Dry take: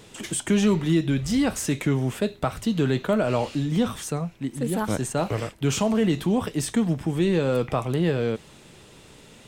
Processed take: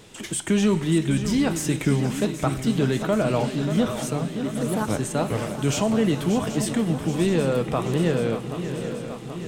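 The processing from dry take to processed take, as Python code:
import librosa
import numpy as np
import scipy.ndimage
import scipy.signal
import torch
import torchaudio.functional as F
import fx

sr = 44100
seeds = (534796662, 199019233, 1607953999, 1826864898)

y = fx.echo_swing(x, sr, ms=779, ratio=3, feedback_pct=64, wet_db=-10.5)
y = fx.rev_schroeder(y, sr, rt60_s=3.4, comb_ms=29, drr_db=15.0)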